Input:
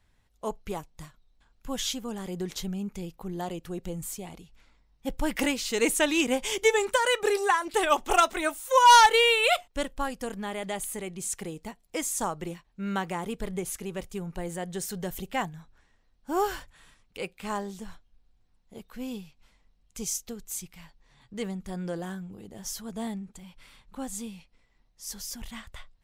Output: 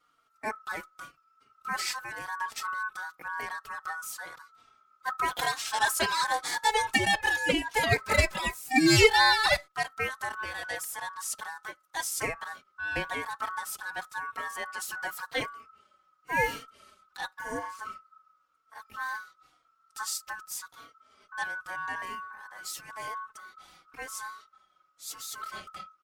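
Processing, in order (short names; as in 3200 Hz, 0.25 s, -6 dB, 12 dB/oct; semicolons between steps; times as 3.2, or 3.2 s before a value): ring modulator 1300 Hz; spectral repair 17.41–17.63, 810–5700 Hz after; endless flanger 3.7 ms -0.92 Hz; gain +4 dB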